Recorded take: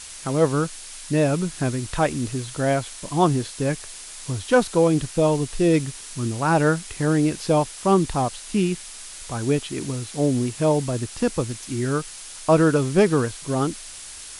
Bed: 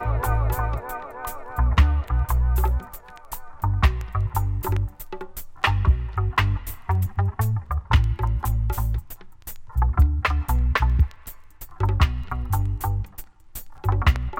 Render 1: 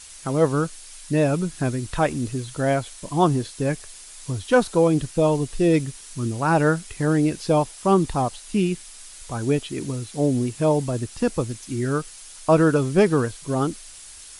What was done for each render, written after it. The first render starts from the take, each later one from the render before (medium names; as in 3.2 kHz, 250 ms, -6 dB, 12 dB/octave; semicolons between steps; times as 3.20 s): noise reduction 6 dB, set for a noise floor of -39 dBFS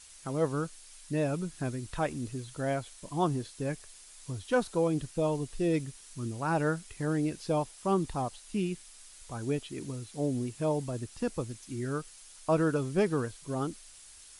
trim -10 dB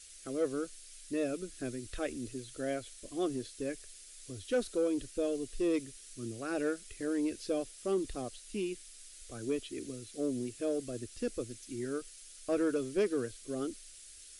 static phaser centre 380 Hz, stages 4; saturation -21 dBFS, distortion -22 dB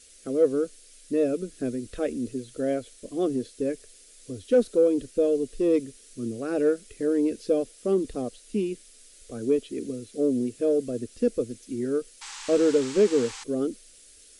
12.21–13.44 s: painted sound noise 770–8500 Hz -41 dBFS; small resonant body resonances 220/450 Hz, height 12 dB, ringing for 20 ms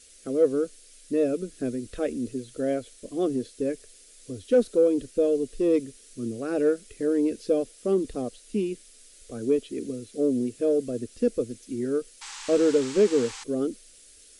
no audible change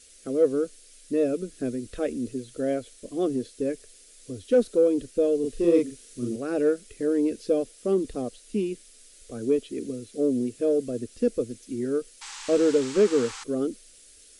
5.40–6.36 s: doubling 41 ms -2 dB; 12.94–13.58 s: peaking EQ 1.3 kHz +6.5 dB 0.5 oct